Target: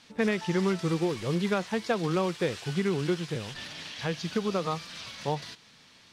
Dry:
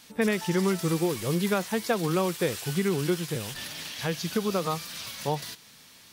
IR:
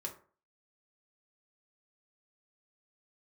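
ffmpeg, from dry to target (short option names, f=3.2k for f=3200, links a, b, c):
-af "acrusher=bits=4:mode=log:mix=0:aa=0.000001,lowpass=5.1k,volume=-1.5dB"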